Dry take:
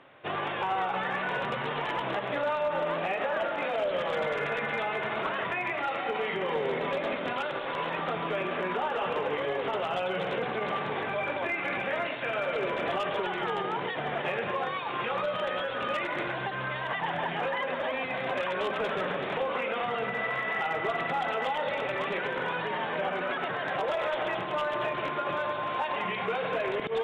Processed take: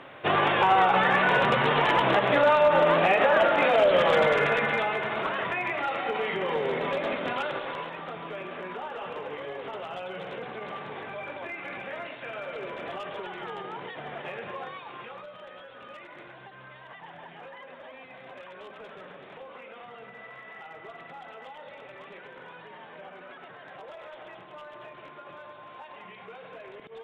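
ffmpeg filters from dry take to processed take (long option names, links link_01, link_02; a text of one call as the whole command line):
ffmpeg -i in.wav -af "volume=9dB,afade=type=out:start_time=4.12:duration=0.92:silence=0.421697,afade=type=out:start_time=7.52:duration=0.4:silence=0.398107,afade=type=out:start_time=14.62:duration=0.67:silence=0.398107" out.wav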